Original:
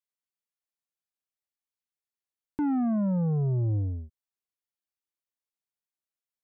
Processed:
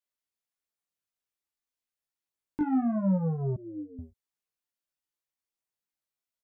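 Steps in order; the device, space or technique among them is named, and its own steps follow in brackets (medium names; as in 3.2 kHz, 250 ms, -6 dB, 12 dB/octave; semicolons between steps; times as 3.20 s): double-tracked vocal (doubling 20 ms -5 dB; chorus 0.62 Hz, delay 16.5 ms, depth 3.4 ms); 3.56–3.99 s: elliptic band-pass 190–460 Hz, stop band 50 dB; trim +2.5 dB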